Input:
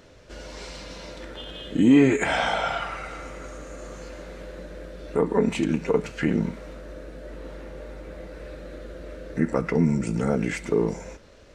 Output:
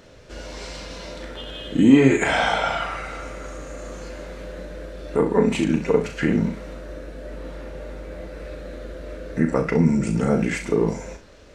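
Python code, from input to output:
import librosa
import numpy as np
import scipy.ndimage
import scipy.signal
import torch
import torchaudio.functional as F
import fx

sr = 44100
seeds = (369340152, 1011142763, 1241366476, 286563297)

y = fx.room_early_taps(x, sr, ms=(37, 65), db=(-7.5, -12.0))
y = y * 10.0 ** (2.5 / 20.0)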